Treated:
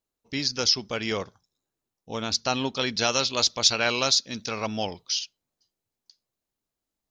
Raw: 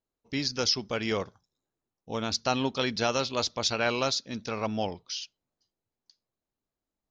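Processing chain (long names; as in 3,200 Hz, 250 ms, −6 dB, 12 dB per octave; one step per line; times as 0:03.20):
high-shelf EQ 2,500 Hz +5.5 dB, from 0:02.99 +11 dB, from 0:05.19 +6.5 dB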